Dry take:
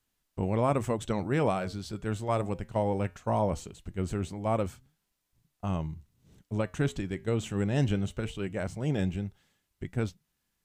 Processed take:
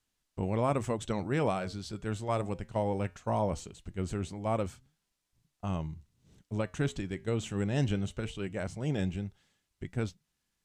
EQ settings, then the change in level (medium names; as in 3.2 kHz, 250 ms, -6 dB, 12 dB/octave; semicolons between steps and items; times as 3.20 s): distance through air 51 m; treble shelf 4.7 kHz +9 dB; -2.5 dB